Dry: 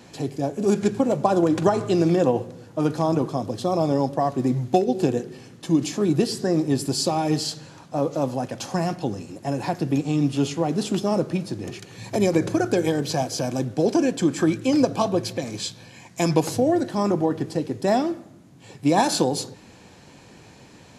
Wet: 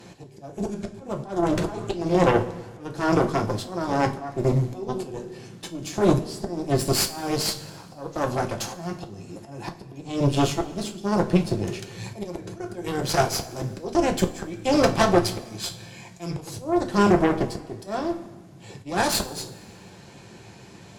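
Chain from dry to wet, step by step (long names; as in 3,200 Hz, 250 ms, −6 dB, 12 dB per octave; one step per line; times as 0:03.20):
volume swells 395 ms
harmonic generator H 8 −14 dB, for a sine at −6 dBFS
coupled-rooms reverb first 0.23 s, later 1.5 s, from −17 dB, DRR 3.5 dB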